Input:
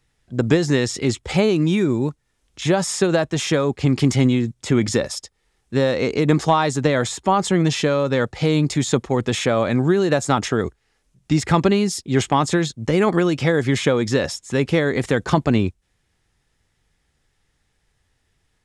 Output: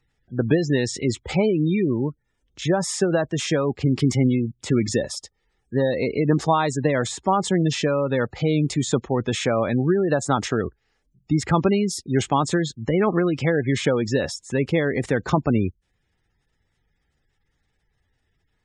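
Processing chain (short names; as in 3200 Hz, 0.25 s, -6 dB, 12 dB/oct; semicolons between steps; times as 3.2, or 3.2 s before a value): spectral gate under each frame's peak -25 dB strong; gain -2.5 dB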